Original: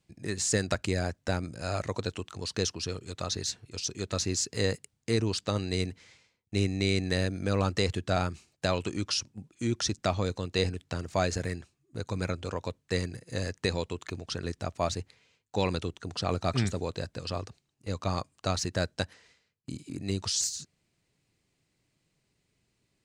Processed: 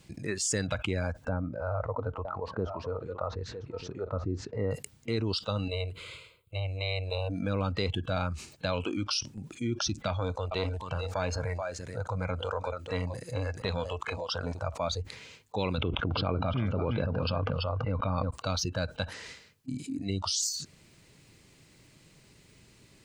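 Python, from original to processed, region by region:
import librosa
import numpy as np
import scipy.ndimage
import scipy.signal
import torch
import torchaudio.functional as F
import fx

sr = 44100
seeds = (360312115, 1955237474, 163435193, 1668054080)

y = fx.chain(x, sr, fx.lowpass(hz=1300.0, slope=12),
    fx.echo_single(ms=958, db=-20.0), at=(1.29, 4.71))
y = fx.chain(y, sr, fx.fixed_phaser(hz=1200.0, stages=8),
    fx.transformer_sat(knee_hz=450.0), at=(5.68, 7.3))
y = fx.chain(y, sr, fx.echo_single(ms=432, db=-13.5),
    fx.transformer_sat(knee_hz=590.0), at=(10.08, 14.65))
y = fx.chain(y, sr, fx.air_absorb(metres=260.0),
    fx.echo_single(ms=334, db=-11.0),
    fx.env_flatten(amount_pct=70), at=(15.78, 18.31))
y = fx.noise_reduce_blind(y, sr, reduce_db=18)
y = fx.notch(y, sr, hz=720.0, q=12.0)
y = fx.env_flatten(y, sr, amount_pct=70)
y = y * 10.0 ** (-5.0 / 20.0)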